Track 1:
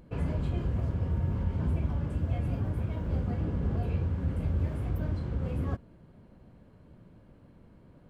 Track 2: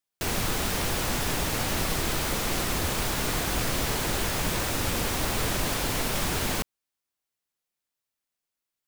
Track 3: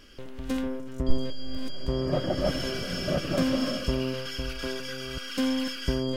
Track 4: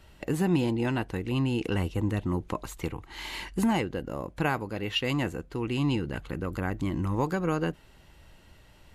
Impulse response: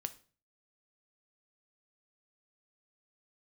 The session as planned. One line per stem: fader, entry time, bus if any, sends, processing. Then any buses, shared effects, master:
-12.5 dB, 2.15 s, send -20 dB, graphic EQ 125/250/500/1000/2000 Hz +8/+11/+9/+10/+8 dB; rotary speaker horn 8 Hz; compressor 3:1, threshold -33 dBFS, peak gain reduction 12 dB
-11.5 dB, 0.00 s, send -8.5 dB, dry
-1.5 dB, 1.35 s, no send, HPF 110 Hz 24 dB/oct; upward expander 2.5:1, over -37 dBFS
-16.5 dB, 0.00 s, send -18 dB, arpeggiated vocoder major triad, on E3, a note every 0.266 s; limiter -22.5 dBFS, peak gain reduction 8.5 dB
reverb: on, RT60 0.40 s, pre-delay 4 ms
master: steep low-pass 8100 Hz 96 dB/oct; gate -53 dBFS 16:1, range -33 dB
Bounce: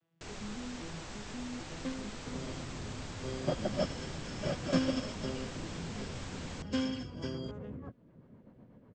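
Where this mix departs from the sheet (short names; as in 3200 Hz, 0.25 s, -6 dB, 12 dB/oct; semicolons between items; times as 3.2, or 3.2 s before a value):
stem 2 -11.5 dB -> -19.0 dB; master: missing gate -53 dBFS 16:1, range -33 dB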